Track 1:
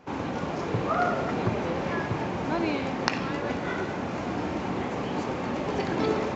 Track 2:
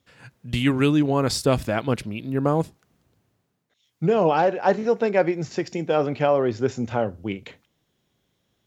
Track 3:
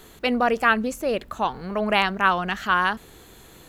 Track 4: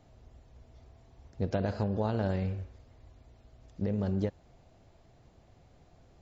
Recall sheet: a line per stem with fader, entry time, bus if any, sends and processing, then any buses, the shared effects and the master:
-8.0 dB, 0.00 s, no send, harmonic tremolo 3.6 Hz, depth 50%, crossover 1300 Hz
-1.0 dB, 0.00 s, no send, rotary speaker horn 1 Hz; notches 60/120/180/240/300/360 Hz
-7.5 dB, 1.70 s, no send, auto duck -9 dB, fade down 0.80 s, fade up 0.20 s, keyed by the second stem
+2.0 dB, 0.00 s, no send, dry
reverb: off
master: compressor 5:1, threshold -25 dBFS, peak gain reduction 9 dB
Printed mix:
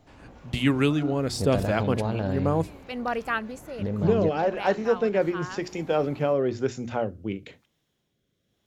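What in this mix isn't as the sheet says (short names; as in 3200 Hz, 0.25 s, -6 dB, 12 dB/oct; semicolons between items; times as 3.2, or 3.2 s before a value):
stem 1 -8.0 dB -> -17.5 dB; stem 3: entry 1.70 s -> 2.65 s; master: missing compressor 5:1, threshold -25 dBFS, peak gain reduction 9 dB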